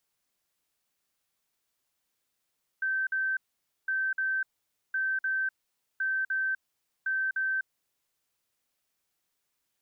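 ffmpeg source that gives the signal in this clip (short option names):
-f lavfi -i "aevalsrc='0.0501*sin(2*PI*1550*t)*clip(min(mod(mod(t,1.06),0.3),0.25-mod(mod(t,1.06),0.3))/0.005,0,1)*lt(mod(t,1.06),0.6)':d=5.3:s=44100"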